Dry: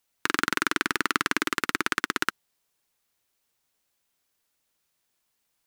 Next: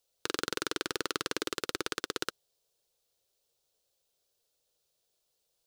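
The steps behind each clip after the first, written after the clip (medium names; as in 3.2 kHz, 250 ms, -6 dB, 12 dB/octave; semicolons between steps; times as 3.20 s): ten-band graphic EQ 250 Hz -11 dB, 500 Hz +11 dB, 1 kHz -7 dB, 2 kHz -11 dB, 4 kHz +4 dB, 16 kHz -4 dB; in parallel at +0.5 dB: peak limiter -12.5 dBFS, peak gain reduction 7.5 dB; on the sum: trim -7 dB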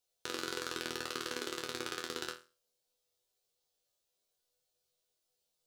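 chord resonator E2 fifth, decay 0.33 s; trim +7 dB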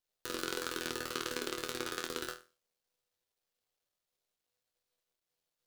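dead-time distortion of 0.078 ms; trim +2.5 dB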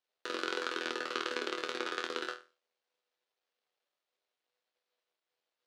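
band-pass 360–3800 Hz; trim +4 dB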